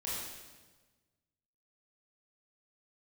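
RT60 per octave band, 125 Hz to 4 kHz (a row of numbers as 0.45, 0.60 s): 1.8, 1.6, 1.4, 1.2, 1.2, 1.2 s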